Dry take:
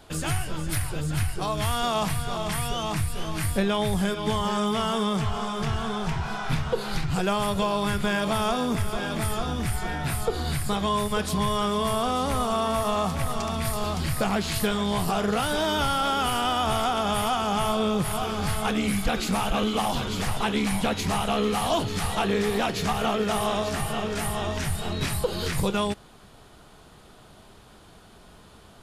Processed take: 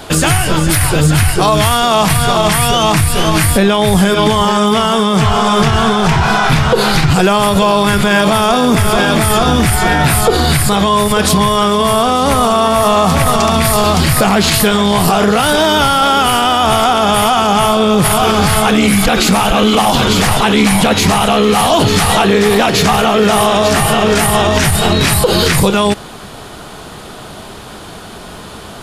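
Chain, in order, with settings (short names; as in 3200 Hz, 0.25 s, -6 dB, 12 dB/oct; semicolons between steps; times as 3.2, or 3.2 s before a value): low shelf 89 Hz -8 dB; maximiser +22.5 dB; gain -1 dB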